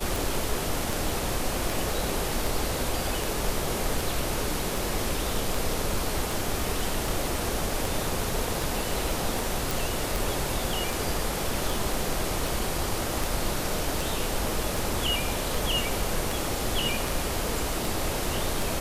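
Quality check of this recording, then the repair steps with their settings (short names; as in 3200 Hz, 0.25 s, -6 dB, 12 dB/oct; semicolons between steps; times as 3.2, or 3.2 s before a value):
tick 78 rpm
9.71 pop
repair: de-click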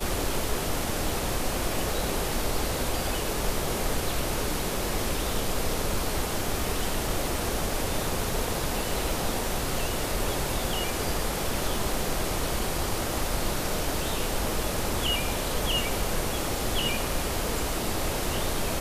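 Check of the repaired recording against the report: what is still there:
none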